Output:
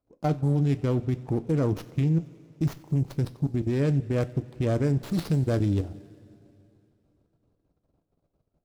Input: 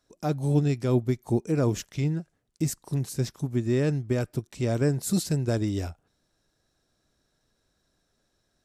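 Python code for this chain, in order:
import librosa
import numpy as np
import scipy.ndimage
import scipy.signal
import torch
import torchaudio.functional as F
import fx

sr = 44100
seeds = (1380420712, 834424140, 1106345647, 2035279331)

p1 = fx.wiener(x, sr, points=25)
p2 = fx.level_steps(p1, sr, step_db=15)
p3 = p2 + fx.echo_wet_highpass(p2, sr, ms=92, feedback_pct=68, hz=2100.0, wet_db=-20.0, dry=0)
p4 = fx.rev_double_slope(p3, sr, seeds[0], early_s=0.22, late_s=3.0, knee_db=-20, drr_db=8.5)
p5 = fx.running_max(p4, sr, window=5)
y = F.gain(torch.from_numpy(p5), 6.0).numpy()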